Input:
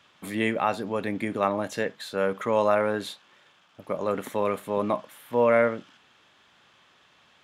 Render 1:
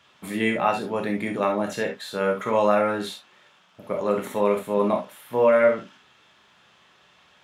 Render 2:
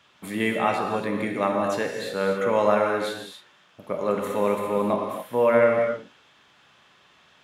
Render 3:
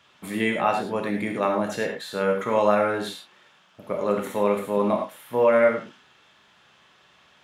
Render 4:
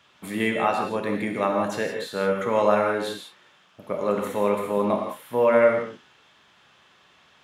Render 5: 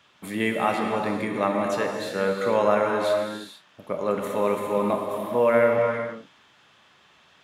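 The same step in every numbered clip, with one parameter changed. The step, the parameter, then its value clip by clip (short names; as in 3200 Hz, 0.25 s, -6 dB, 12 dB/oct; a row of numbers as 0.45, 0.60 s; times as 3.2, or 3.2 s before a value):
non-linear reverb, gate: 90, 300, 130, 200, 490 ms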